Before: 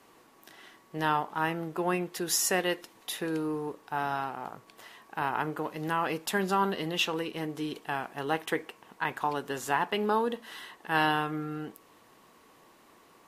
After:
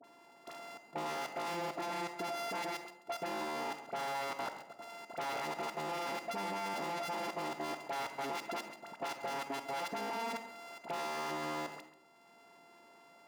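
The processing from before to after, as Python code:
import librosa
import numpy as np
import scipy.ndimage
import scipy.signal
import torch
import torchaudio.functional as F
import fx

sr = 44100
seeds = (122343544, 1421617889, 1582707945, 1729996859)

y = np.r_[np.sort(x[:len(x) // 64 * 64].reshape(-1, 64), axis=1).ravel(), x[len(x) // 64 * 64:]]
y = fx.peak_eq(y, sr, hz=890.0, db=14.0, octaves=0.34)
y = fx.dispersion(y, sr, late='highs', ms=42.0, hz=1200.0)
y = fx.level_steps(y, sr, step_db=18)
y = 10.0 ** (-35.5 / 20.0) * np.tanh(y / 10.0 ** (-35.5 / 20.0))
y = scipy.signal.sosfilt(scipy.signal.butter(2, 210.0, 'highpass', fs=sr, output='sos'), y)
y = fx.high_shelf(y, sr, hz=6700.0, db=-10.0)
y = y + 10.0 ** (-16.5 / 20.0) * np.pad(y, (int(136 * sr / 1000.0), 0))[:len(y)]
y = fx.rev_freeverb(y, sr, rt60_s=0.63, hf_ratio=0.4, predelay_ms=5, drr_db=10.0)
y = fx.band_squash(y, sr, depth_pct=40)
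y = y * 10.0 ** (3.0 / 20.0)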